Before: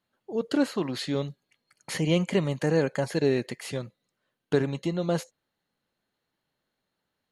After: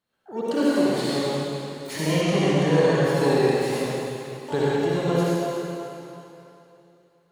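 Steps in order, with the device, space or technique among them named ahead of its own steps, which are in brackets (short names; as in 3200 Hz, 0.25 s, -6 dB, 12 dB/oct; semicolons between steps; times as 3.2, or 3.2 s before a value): shimmer-style reverb (harmoniser +12 st -10 dB; reverb RT60 3.0 s, pre-delay 51 ms, DRR -7.5 dB); 2.21–3.05 LPF 9500 Hz 12 dB/oct; gain -3 dB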